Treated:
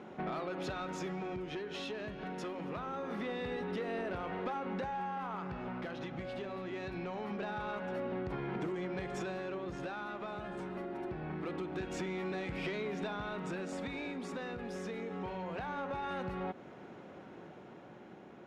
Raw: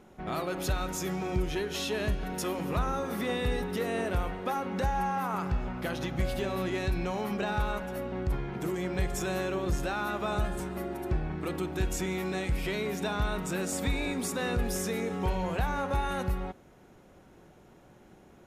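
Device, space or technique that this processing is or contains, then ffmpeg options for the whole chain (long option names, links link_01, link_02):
AM radio: -af "highpass=160,lowpass=3300,acompressor=threshold=-40dB:ratio=10,asoftclip=type=tanh:threshold=-35.5dB,tremolo=f=0.24:d=0.36,volume=7dB"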